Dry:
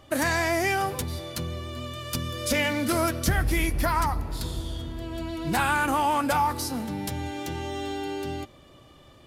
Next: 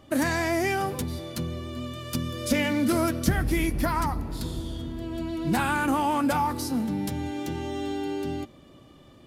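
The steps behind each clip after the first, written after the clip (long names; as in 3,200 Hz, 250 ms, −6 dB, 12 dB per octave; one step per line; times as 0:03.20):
parametric band 230 Hz +8.5 dB 1.5 octaves
level −3 dB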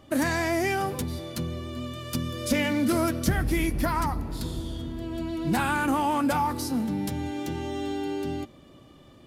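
soft clipping −10.5 dBFS, distortion −29 dB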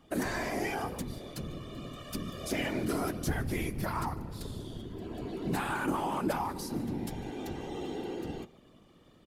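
single-tap delay 149 ms −23 dB
random phases in short frames
level −7.5 dB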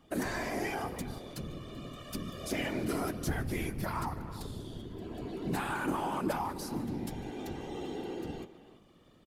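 far-end echo of a speakerphone 320 ms, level −14 dB
level −1.5 dB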